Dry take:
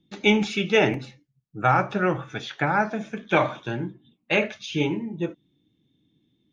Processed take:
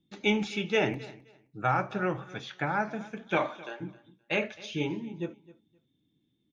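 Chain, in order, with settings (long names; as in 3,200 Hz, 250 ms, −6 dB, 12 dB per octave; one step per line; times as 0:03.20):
0:03.37–0:03.80: high-pass filter 140 Hz → 540 Hz 24 dB per octave
repeating echo 261 ms, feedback 20%, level −20 dB
level −7 dB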